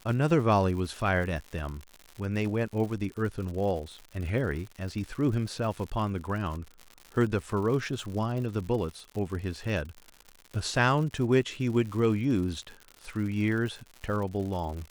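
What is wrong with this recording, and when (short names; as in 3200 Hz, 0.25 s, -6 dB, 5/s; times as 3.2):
crackle 130/s -36 dBFS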